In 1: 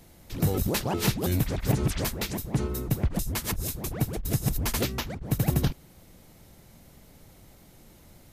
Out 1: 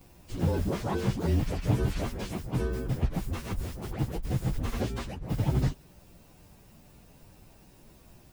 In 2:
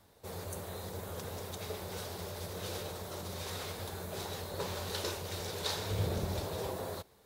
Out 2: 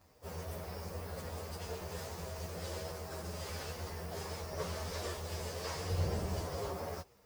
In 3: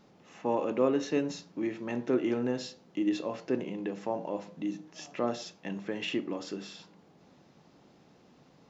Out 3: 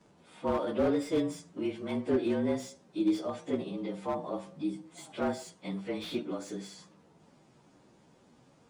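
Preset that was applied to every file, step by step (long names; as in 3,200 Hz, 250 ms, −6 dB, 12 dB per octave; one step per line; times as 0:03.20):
partials spread apart or drawn together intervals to 110%
slew-rate limiting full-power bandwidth 27 Hz
level +2 dB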